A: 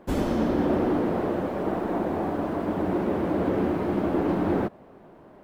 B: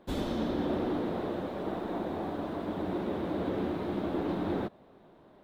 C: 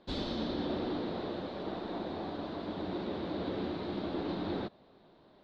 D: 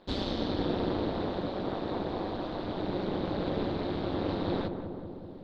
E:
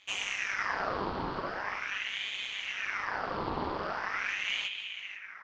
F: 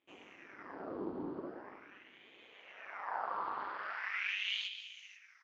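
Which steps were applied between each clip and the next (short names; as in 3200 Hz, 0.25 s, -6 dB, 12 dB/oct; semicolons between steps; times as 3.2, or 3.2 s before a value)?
bell 3700 Hz +12 dB 0.43 oct; gain -7.5 dB
synth low-pass 4400 Hz, resonance Q 3.9; gain -4 dB
AM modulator 200 Hz, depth 75%; on a send: darkening echo 0.191 s, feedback 75%, low-pass 1200 Hz, level -7 dB; on the sum: gain +7 dB
echo 0.494 s -15 dB; ring modulator with a swept carrier 1700 Hz, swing 65%, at 0.42 Hz
band-pass sweep 310 Hz -> 5900 Hz, 2.21–4.97; gain +1 dB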